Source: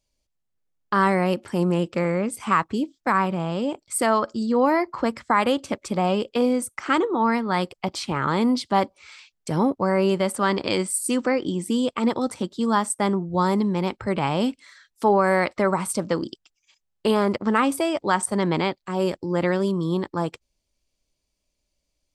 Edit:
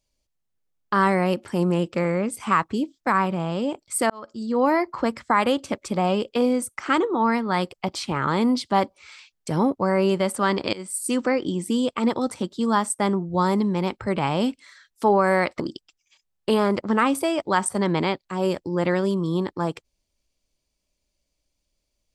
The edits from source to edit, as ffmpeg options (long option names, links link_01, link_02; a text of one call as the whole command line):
ffmpeg -i in.wav -filter_complex "[0:a]asplit=4[link_01][link_02][link_03][link_04];[link_01]atrim=end=4.1,asetpts=PTS-STARTPTS,afade=type=out:start_time=4.096:duration=0.004:curve=hsin[link_05];[link_02]atrim=start=4.1:end=10.73,asetpts=PTS-STARTPTS,afade=type=in:duration=0.58,afade=type=out:start_time=6.626:duration=0.004:curve=hsin:silence=0.0794328[link_06];[link_03]atrim=start=10.73:end=15.602,asetpts=PTS-STARTPTS,afade=type=in:duration=0.52:curve=qsin:silence=0.0794328[link_07];[link_04]atrim=start=16.168[link_08];[link_05][link_06][link_07]concat=n=3:v=0:a=1[link_09];[link_09][link_08]acrossfade=duration=0.004:curve1=hsin:curve2=hsin" out.wav